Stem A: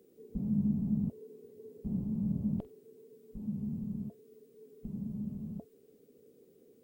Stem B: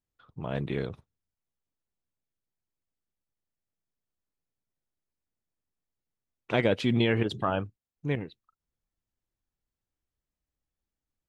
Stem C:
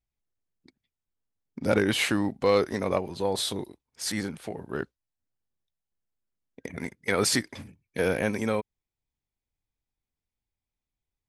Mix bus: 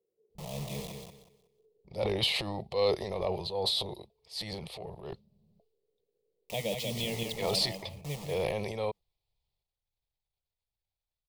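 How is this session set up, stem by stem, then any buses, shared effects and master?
-14.5 dB, 0.00 s, no send, no echo send, compression 2:1, threshold -37 dBFS, peak gain reduction 6.5 dB; tone controls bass -5 dB, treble -12 dB
+2.5 dB, 0.00 s, no send, echo send -5 dB, high-order bell 800 Hz -9.5 dB; static phaser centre 370 Hz, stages 6; bit crusher 7-bit
-2.5 dB, 0.30 s, no send, no echo send, transient shaper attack -7 dB, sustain +9 dB; resonant high shelf 5.3 kHz -7 dB, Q 3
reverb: none
echo: feedback delay 185 ms, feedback 25%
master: static phaser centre 630 Hz, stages 4

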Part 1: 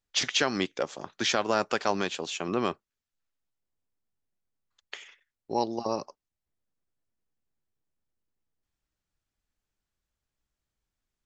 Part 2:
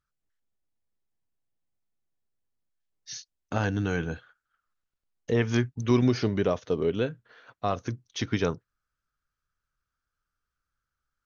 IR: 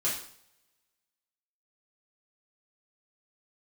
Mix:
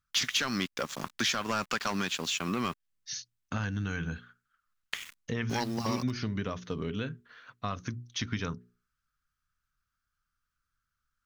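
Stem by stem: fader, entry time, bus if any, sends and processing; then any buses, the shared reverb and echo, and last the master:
+2.0 dB, 0.00 s, no send, gate with hold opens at -51 dBFS; waveshaping leveller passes 2; word length cut 8-bit, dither none
+1.5 dB, 0.00 s, no send, hum notches 60/120/180/240/300/360/420 Hz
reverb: none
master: high-order bell 520 Hz -9.5 dB; compression 2.5:1, threshold -31 dBFS, peak gain reduction 11 dB

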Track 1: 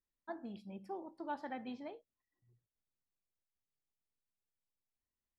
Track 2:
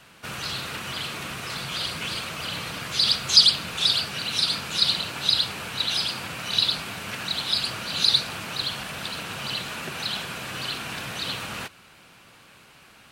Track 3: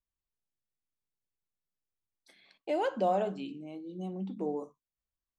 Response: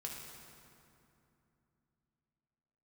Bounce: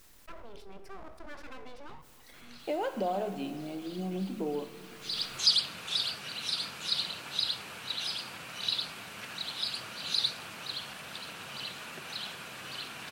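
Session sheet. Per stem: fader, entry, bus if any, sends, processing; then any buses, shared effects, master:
-5.0 dB, 0.00 s, send -8 dB, full-wave rectifier; level flattener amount 70%
-9.5 dB, 2.10 s, no send, bass shelf 130 Hz -9.5 dB; auto duck -13 dB, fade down 0.35 s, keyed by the third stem
+1.5 dB, 0.00 s, send -5 dB, compression 3:1, threshold -35 dBFS, peak gain reduction 8.5 dB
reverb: on, RT60 2.8 s, pre-delay 3 ms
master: none

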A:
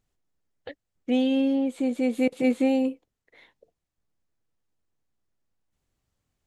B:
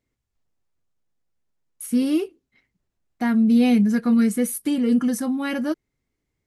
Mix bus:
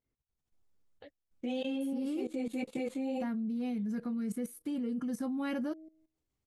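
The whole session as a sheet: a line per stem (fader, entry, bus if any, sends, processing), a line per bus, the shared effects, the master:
+1.0 dB, 0.35 s, no send, three-phase chorus
-4.0 dB, 0.00 s, no send, hard clipper -10.5 dBFS, distortion -44 dB; treble shelf 2.6 kHz -7.5 dB; de-hum 158.4 Hz, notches 4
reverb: none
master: peaking EQ 1.8 kHz -3 dB 0.8 oct; level held to a coarse grid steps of 17 dB

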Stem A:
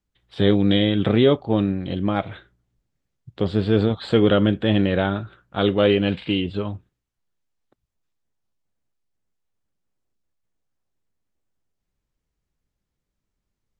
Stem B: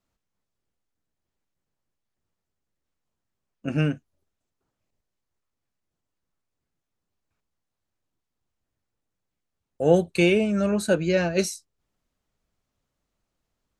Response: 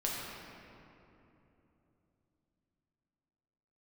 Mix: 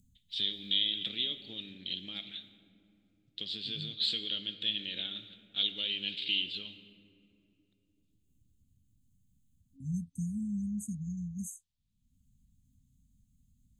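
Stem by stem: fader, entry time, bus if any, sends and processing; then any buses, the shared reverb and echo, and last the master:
+1.5 dB, 0.00 s, send -12.5 dB, compression, threshold -20 dBFS, peak gain reduction 9 dB; band-pass filter 3.3 kHz, Q 1.4
-13.5 dB, 0.00 s, no send, FFT band-reject 270–6200 Hz; peaking EQ 79 Hz +7 dB 2.8 oct; upward compressor, threshold -34 dBFS; auto duck -12 dB, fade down 1.90 s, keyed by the first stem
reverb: on, RT60 3.1 s, pre-delay 6 ms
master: FFT filter 250 Hz 0 dB, 1 kHz -24 dB, 1.5 kHz -17 dB, 3.6 kHz +5 dB; tape noise reduction on one side only decoder only

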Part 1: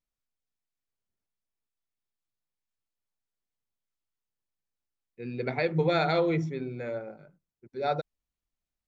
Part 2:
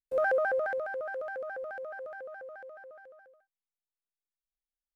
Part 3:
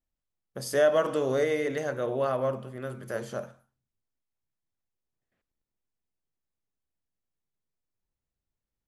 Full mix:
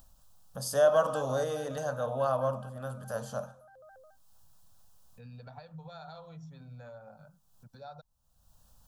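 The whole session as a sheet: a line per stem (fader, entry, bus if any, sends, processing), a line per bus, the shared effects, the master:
-5.0 dB, 0.00 s, no send, peaking EQ 350 Hz -10.5 dB 1.2 oct; compression, threshold -38 dBFS, peak gain reduction 13 dB
-6.5 dB, 0.70 s, no send, none
+2.0 dB, 0.00 s, no send, none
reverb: none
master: upward compressor, threshold -38 dBFS; static phaser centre 880 Hz, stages 4

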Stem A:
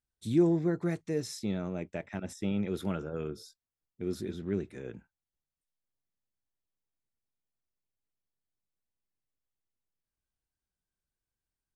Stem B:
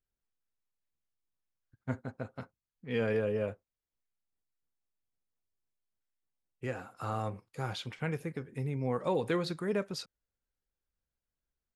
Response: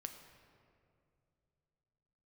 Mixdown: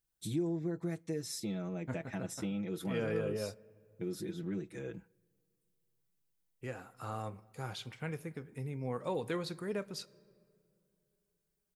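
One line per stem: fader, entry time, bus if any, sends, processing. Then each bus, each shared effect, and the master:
-2.0 dB, 0.00 s, send -20.5 dB, comb 6.1 ms, depth 86%; compression 2.5:1, threshold -36 dBFS, peak gain reduction 14 dB
-7.0 dB, 0.00 s, send -9 dB, none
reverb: on, RT60 2.5 s, pre-delay 6 ms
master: treble shelf 8.2 kHz +9.5 dB

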